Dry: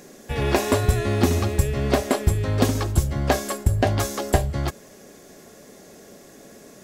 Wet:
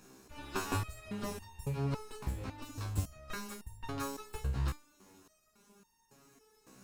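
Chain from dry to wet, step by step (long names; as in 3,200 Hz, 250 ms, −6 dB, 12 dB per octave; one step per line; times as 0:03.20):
lower of the sound and its delayed copy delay 0.74 ms
0:01.91–0:02.85: downward compressor, threshold −21 dBFS, peak gain reduction 8.5 dB
step-sequenced resonator 3.6 Hz 65–920 Hz
level −3 dB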